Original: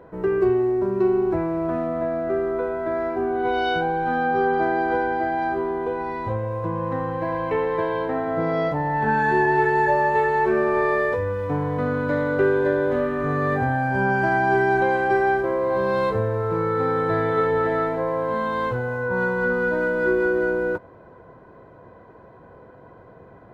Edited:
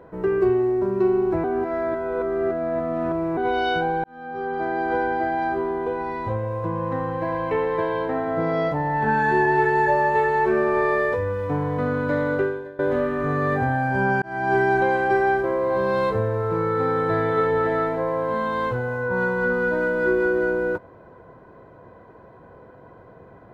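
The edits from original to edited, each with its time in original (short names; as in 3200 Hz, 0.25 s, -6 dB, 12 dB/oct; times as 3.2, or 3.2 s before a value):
1.44–3.37 reverse
4.04–5.03 fade in linear
12.34–12.79 fade out quadratic, to -21 dB
14.22–14.56 fade in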